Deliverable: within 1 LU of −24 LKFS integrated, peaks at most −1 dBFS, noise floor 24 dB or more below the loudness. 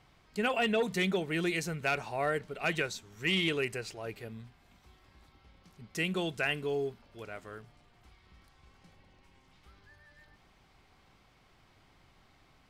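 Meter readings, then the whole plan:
integrated loudness −32.5 LKFS; sample peak −20.5 dBFS; target loudness −24.0 LKFS
→ level +8.5 dB

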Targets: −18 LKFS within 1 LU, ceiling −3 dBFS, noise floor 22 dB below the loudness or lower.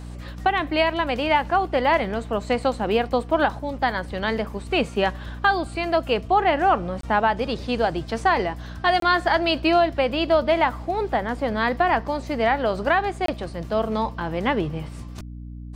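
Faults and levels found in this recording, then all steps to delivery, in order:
number of dropouts 3; longest dropout 23 ms; mains hum 60 Hz; hum harmonics up to 300 Hz; level of the hum −34 dBFS; integrated loudness −22.5 LKFS; sample peak −6.5 dBFS; target loudness −18.0 LKFS
→ repair the gap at 0:07.01/0:09.00/0:13.26, 23 ms
mains-hum notches 60/120/180/240/300 Hz
level +4.5 dB
brickwall limiter −3 dBFS

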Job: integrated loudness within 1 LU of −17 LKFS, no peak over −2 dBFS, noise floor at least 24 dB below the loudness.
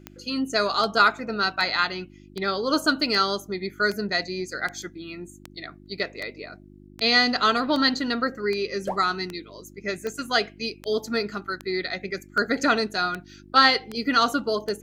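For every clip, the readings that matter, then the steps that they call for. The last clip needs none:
number of clicks 20; mains hum 50 Hz; hum harmonics up to 350 Hz; level of the hum −49 dBFS; integrated loudness −24.0 LKFS; sample peak −5.5 dBFS; target loudness −17.0 LKFS
→ click removal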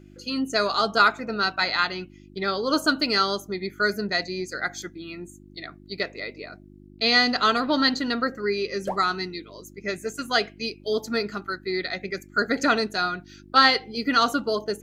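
number of clicks 0; mains hum 50 Hz; hum harmonics up to 350 Hz; level of the hum −49 dBFS
→ hum removal 50 Hz, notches 7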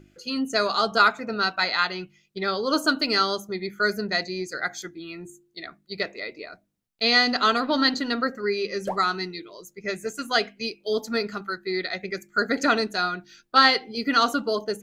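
mains hum none found; integrated loudness −24.0 LKFS; sample peak −5.5 dBFS; target loudness −17.0 LKFS
→ level +7 dB
brickwall limiter −2 dBFS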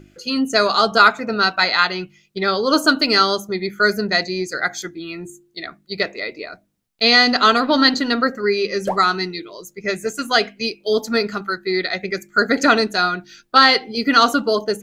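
integrated loudness −17.5 LKFS; sample peak −2.0 dBFS; background noise floor −59 dBFS

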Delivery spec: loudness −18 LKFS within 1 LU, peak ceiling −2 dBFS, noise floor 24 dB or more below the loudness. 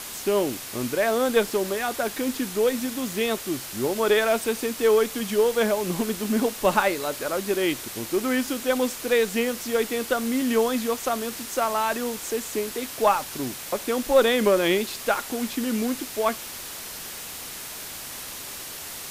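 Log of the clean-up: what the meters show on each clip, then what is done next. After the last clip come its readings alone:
background noise floor −37 dBFS; target noise floor −49 dBFS; integrated loudness −25.0 LKFS; sample peak −6.0 dBFS; target loudness −18.0 LKFS
→ broadband denoise 12 dB, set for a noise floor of −37 dBFS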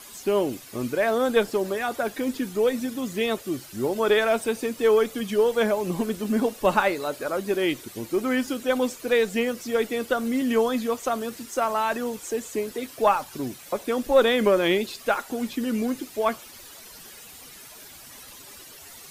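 background noise floor −45 dBFS; target noise floor −49 dBFS
→ broadband denoise 6 dB, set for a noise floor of −45 dBFS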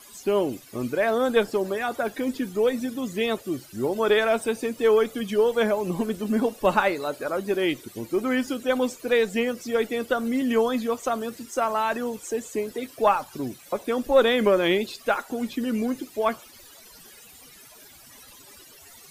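background noise floor −49 dBFS; integrated loudness −25.0 LKFS; sample peak −6.5 dBFS; target loudness −18.0 LKFS
→ level +7 dB
brickwall limiter −2 dBFS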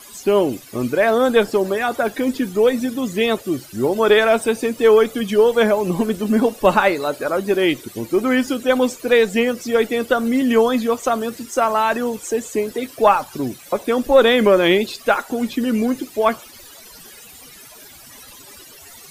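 integrated loudness −18.0 LKFS; sample peak −2.0 dBFS; background noise floor −42 dBFS

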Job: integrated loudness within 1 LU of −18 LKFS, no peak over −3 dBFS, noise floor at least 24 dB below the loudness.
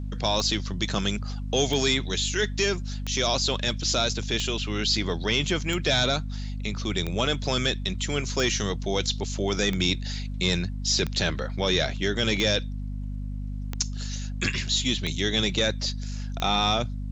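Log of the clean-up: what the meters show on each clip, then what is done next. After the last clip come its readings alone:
number of clicks 13; mains hum 50 Hz; hum harmonics up to 250 Hz; level of the hum −29 dBFS; integrated loudness −26.0 LKFS; sample peak −10.5 dBFS; target loudness −18.0 LKFS
→ click removal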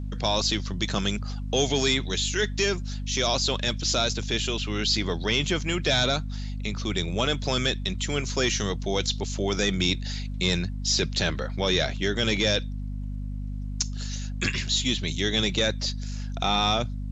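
number of clicks 0; mains hum 50 Hz; hum harmonics up to 250 Hz; level of the hum −29 dBFS
→ mains-hum notches 50/100/150/200/250 Hz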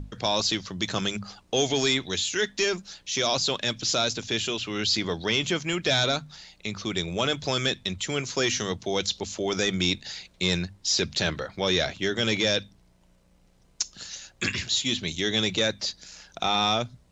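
mains hum none found; integrated loudness −26.0 LKFS; sample peak −13.0 dBFS; target loudness −18.0 LKFS
→ level +8 dB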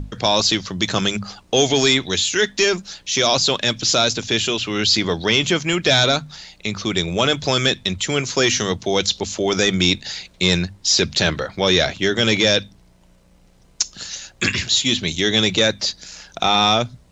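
integrated loudness −18.0 LKFS; sample peak −5.0 dBFS; background noise floor −53 dBFS

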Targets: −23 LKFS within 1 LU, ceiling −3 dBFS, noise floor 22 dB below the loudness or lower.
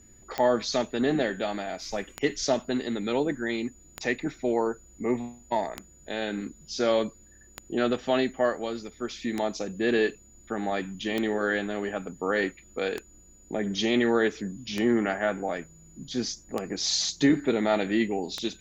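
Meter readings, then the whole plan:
number of clicks 11; interfering tone 6,900 Hz; level of the tone −55 dBFS; integrated loudness −28.5 LKFS; sample peak −11.0 dBFS; target loudness −23.0 LKFS
→ click removal
notch filter 6,900 Hz, Q 30
level +5.5 dB

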